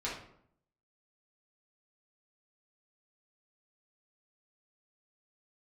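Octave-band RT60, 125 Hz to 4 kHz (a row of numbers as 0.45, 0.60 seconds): 0.80, 0.80, 0.70, 0.65, 0.55, 0.40 seconds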